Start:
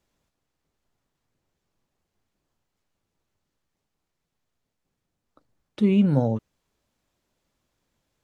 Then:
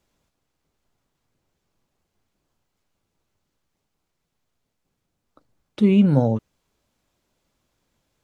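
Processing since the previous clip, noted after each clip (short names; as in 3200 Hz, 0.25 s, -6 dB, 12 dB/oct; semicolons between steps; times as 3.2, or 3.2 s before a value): notch 1800 Hz, Q 23; gain +3.5 dB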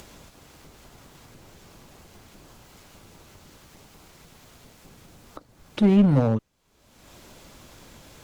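one-sided clip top -15.5 dBFS; upward compressor, threshold -28 dBFS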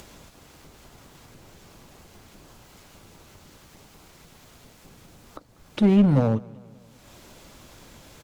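feedback echo 0.192 s, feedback 56%, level -23.5 dB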